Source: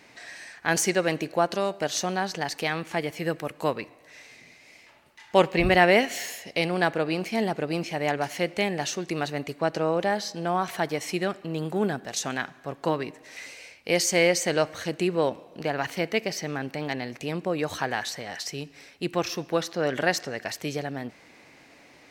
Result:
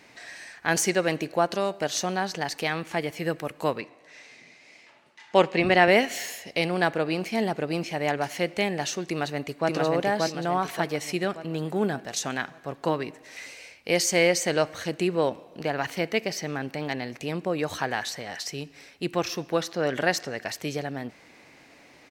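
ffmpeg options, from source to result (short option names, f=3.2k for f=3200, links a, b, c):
-filter_complex "[0:a]asettb=1/sr,asplit=3[a][b][c];[a]atrim=end=3.814[d];[b]atrim=start=3.81:end=5.88,asetpts=PTS-STARTPTS,afade=t=in:d=0.004:c=qsin,afade=t=out:st=2.066:d=0.004:c=qsin,highpass=150,lowpass=7.6k[e];[c]atrim=start=5.876[f];[d][e]acrossfade=d=0.004:c1=hsin:c2=qsin[g];[g][f]acrossfade=d=0.004:c1=qsin:c2=hsin,asplit=2[h][i];[i]afade=t=in:st=9.08:d=0.01,afade=t=out:st=9.7:d=0.01,aecho=0:1:580|1160|1740|2320|2900|3480:0.841395|0.378628|0.170383|0.0766721|0.0345025|0.0155261[j];[h][j]amix=inputs=2:normalize=0"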